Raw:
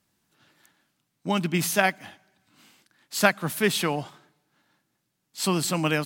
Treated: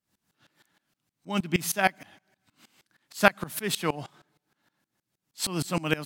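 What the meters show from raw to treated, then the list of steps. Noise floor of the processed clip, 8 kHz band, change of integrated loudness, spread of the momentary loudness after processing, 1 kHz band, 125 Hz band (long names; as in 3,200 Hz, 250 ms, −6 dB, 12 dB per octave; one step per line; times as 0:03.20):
below −85 dBFS, −3.5 dB, −2.5 dB, 11 LU, −1.5 dB, −4.0 dB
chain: tremolo with a ramp in dB swelling 6.4 Hz, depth 22 dB
level +3.5 dB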